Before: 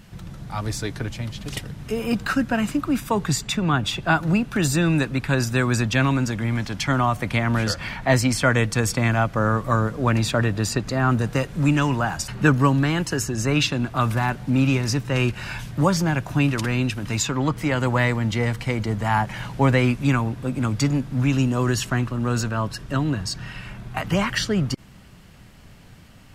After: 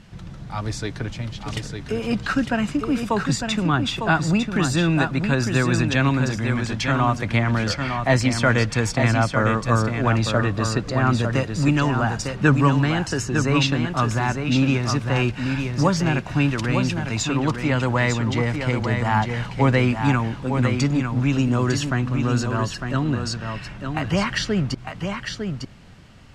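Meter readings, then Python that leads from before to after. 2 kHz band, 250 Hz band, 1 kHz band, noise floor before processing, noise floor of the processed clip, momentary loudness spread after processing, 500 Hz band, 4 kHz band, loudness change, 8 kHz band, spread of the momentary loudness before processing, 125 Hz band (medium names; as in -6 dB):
+1.0 dB, +1.0 dB, +1.0 dB, -46 dBFS, -37 dBFS, 9 LU, +1.0 dB, +0.5 dB, +0.5 dB, -2.0 dB, 9 LU, +1.0 dB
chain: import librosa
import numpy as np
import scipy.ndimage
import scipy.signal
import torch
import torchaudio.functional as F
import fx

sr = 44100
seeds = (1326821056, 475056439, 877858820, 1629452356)

p1 = scipy.signal.sosfilt(scipy.signal.butter(2, 7000.0, 'lowpass', fs=sr, output='sos'), x)
y = p1 + fx.echo_single(p1, sr, ms=903, db=-6.0, dry=0)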